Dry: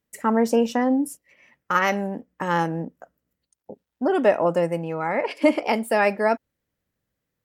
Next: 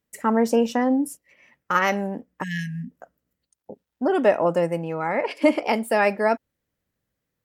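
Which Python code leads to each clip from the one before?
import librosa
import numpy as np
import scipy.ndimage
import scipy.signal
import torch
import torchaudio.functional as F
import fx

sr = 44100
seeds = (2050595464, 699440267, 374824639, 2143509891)

y = fx.spec_erase(x, sr, start_s=2.43, length_s=0.48, low_hz=260.0, high_hz=1600.0)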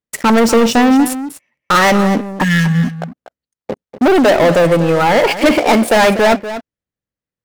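y = scipy.signal.medfilt(x, 3)
y = fx.leveller(y, sr, passes=5)
y = y + 10.0 ** (-12.5 / 20.0) * np.pad(y, (int(242 * sr / 1000.0), 0))[:len(y)]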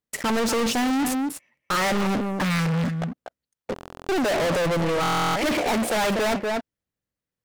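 y = 10.0 ** (-21.5 / 20.0) * np.tanh(x / 10.0 ** (-21.5 / 20.0))
y = fx.buffer_glitch(y, sr, at_s=(3.74, 5.01), block=1024, repeats=14)
y = fx.doppler_dist(y, sr, depth_ms=0.27)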